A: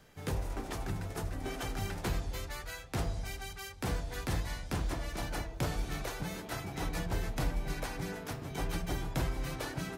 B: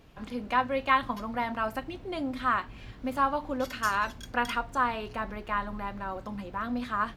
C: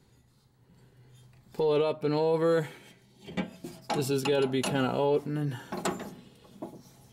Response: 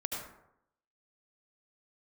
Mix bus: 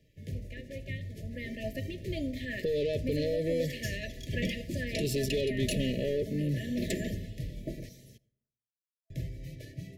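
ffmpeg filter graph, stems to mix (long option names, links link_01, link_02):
-filter_complex "[0:a]equalizer=frequency=110:width=0.92:gain=13,volume=-12.5dB,asplit=3[link_01][link_02][link_03];[link_01]atrim=end=7.89,asetpts=PTS-STARTPTS,afade=type=out:start_time=7.886:duration=0.004:curve=hsin[link_04];[link_02]atrim=start=7.89:end=9.1,asetpts=PTS-STARTPTS,volume=0[link_05];[link_03]atrim=start=9.1,asetpts=PTS-STARTPTS,afade=type=in:duration=0.004:curve=hsin[link_06];[link_04][link_05][link_06]concat=n=3:v=0:a=1,asplit=2[link_07][link_08];[link_08]volume=-19dB[link_09];[1:a]volume=-3dB,afade=type=in:start_time=1.13:duration=0.48:silence=0.237137,asplit=2[link_10][link_11];[link_11]volume=-16dB[link_12];[2:a]aeval=exprs='0.168*(cos(1*acos(clip(val(0)/0.168,-1,1)))-cos(1*PI/2))+0.0237*(cos(5*acos(clip(val(0)/0.168,-1,1)))-cos(5*PI/2))':channel_layout=same,adelay=1050,volume=-3dB,asplit=2[link_13][link_14];[link_14]volume=-23.5dB[link_15];[3:a]atrim=start_sample=2205[link_16];[link_09][link_12][link_15]amix=inputs=3:normalize=0[link_17];[link_17][link_16]afir=irnorm=-1:irlink=0[link_18];[link_07][link_10][link_13][link_18]amix=inputs=4:normalize=0,afftfilt=real='re*(1-between(b*sr/4096,660,1700))':imag='im*(1-between(b*sr/4096,660,1700))':win_size=4096:overlap=0.75,equalizer=frequency=8800:width_type=o:width=0.29:gain=-5.5,acrossover=split=160|3000[link_19][link_20][link_21];[link_20]acompressor=threshold=-31dB:ratio=2[link_22];[link_19][link_22][link_21]amix=inputs=3:normalize=0"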